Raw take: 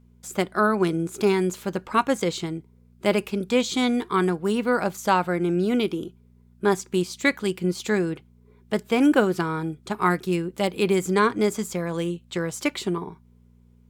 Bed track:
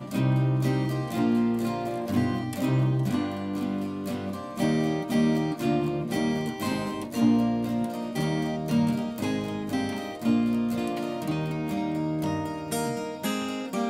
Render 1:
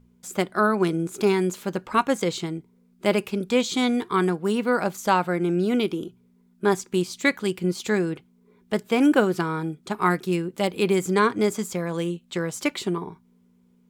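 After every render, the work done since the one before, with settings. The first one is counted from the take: de-hum 60 Hz, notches 2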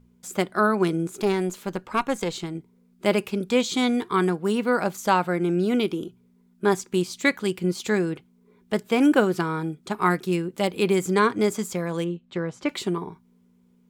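1.11–2.55 s: valve stage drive 13 dB, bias 0.55; 12.04–12.69 s: tape spacing loss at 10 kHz 22 dB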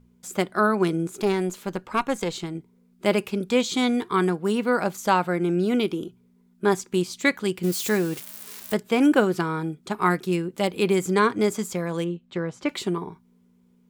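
7.63–8.74 s: zero-crossing glitches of -25 dBFS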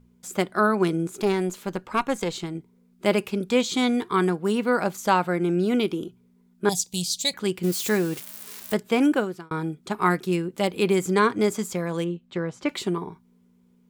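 6.69–7.34 s: FFT filter 170 Hz 0 dB, 340 Hz -19 dB, 720 Hz -1 dB, 1.4 kHz -28 dB, 3.8 kHz +10 dB; 8.96–9.51 s: fade out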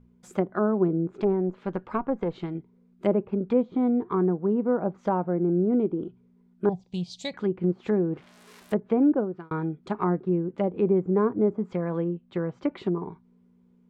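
low-pass 1.4 kHz 6 dB/octave; low-pass that closes with the level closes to 710 Hz, closed at -21.5 dBFS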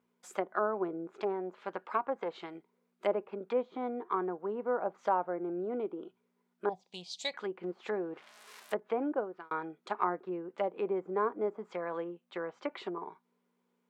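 high-pass 660 Hz 12 dB/octave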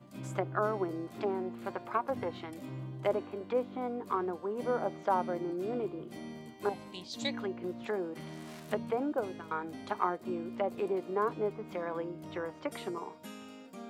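add bed track -18 dB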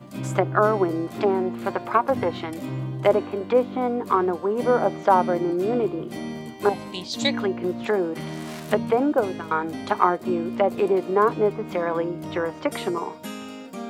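trim +12 dB

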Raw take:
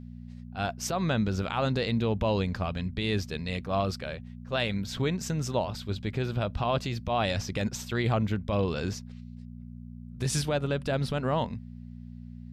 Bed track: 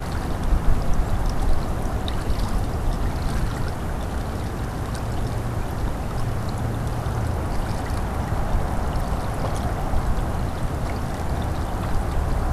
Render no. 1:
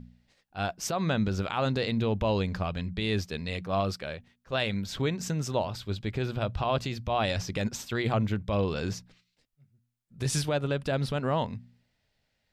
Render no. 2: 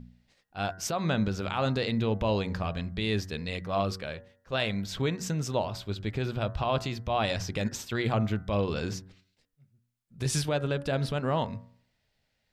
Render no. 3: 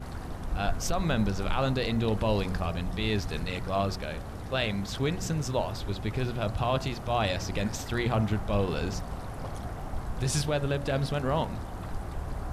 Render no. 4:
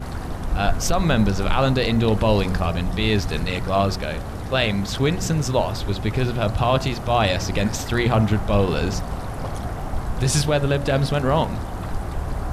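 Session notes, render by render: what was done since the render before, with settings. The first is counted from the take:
de-hum 60 Hz, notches 4
de-hum 94.44 Hz, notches 21
add bed track -12 dB
trim +8.5 dB

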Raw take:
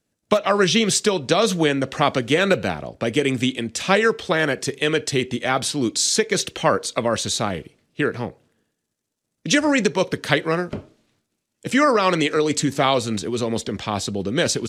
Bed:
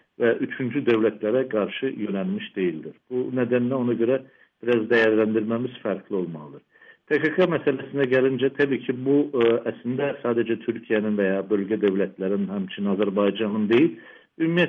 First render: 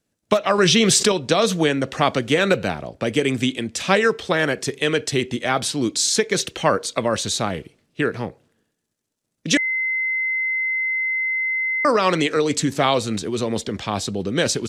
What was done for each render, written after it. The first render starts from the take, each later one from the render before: 0.58–1.12 s: level flattener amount 70%; 9.57–11.85 s: bleep 2.06 kHz -19.5 dBFS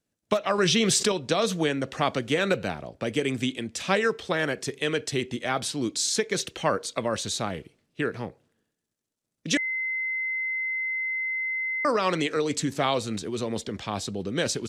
trim -6.5 dB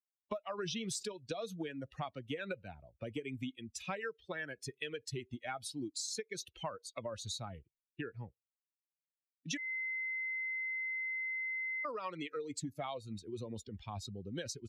expander on every frequency bin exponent 2; compression 6:1, threshold -38 dBFS, peak gain reduction 15.5 dB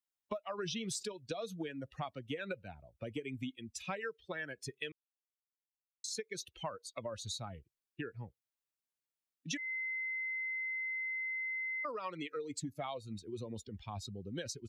4.92–6.04 s: mute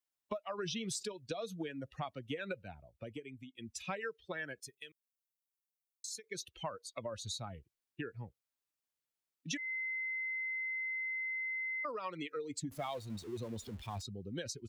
2.76–3.55 s: fade out, to -15 dB; 4.60–6.24 s: pre-emphasis filter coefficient 0.8; 12.71–14.02 s: jump at every zero crossing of -50.5 dBFS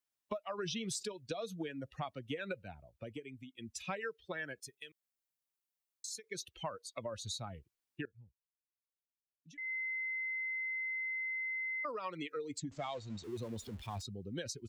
8.05–9.58 s: amplifier tone stack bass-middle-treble 10-0-1; 12.58–13.24 s: elliptic low-pass 7.5 kHz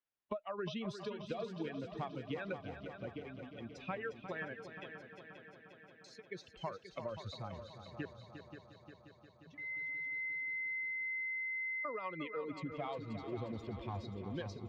distance through air 290 m; multi-head delay 177 ms, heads second and third, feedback 64%, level -10 dB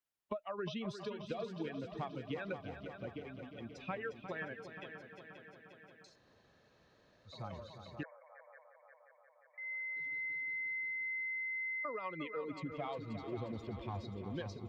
6.10–7.32 s: room tone, crossfade 0.16 s; 8.03–9.97 s: brick-wall FIR band-pass 470–2400 Hz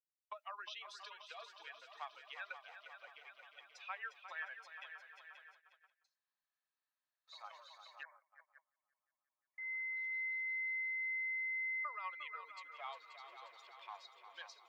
gate -56 dBFS, range -25 dB; inverse Chebyshev high-pass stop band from 200 Hz, stop band 70 dB

